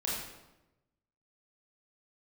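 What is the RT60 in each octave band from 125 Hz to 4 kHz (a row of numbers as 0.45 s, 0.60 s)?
1.4 s, 1.2 s, 1.1 s, 0.95 s, 0.80 s, 0.70 s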